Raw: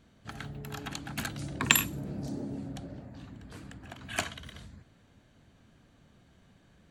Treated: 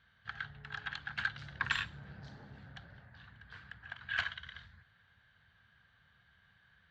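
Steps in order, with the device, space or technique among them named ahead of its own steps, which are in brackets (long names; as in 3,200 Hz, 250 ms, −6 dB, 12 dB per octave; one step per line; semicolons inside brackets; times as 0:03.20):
scooped metal amplifier (tube saturation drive 25 dB, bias 0.6; loudspeaker in its box 78–3,500 Hz, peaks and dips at 610 Hz −6 dB, 1,600 Hz +10 dB, 2,500 Hz −7 dB; guitar amp tone stack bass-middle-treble 10-0-10)
level +7 dB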